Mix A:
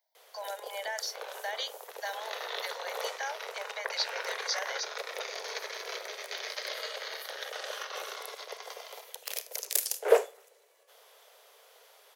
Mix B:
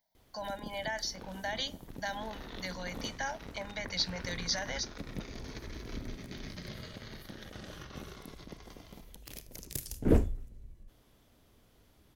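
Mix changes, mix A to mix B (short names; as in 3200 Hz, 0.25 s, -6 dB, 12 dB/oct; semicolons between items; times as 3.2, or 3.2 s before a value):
background -11.5 dB; master: remove steep high-pass 440 Hz 72 dB/oct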